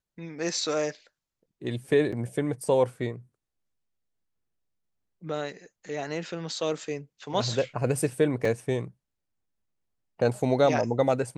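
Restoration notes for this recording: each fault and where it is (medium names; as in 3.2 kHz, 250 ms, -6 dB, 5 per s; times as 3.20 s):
2.12–2.13 s: dropout 5.7 ms
8.45 s: dropout 3.5 ms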